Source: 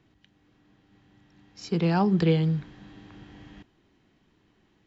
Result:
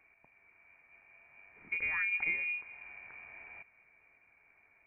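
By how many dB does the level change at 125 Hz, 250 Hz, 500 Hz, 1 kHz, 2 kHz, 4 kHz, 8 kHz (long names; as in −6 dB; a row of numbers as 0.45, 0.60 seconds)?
below −35 dB, −36.0 dB, −29.5 dB, −18.5 dB, +9.0 dB, below −15 dB, can't be measured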